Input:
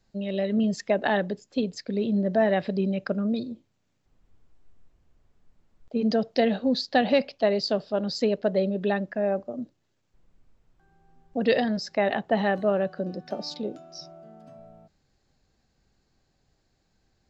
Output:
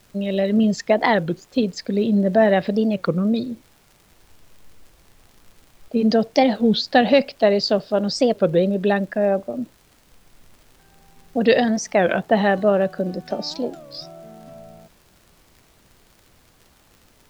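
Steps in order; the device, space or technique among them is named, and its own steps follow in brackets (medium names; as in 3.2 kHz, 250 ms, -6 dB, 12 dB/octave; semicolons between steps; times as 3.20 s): warped LP (warped record 33 1/3 rpm, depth 250 cents; crackle; pink noise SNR 35 dB); trim +6.5 dB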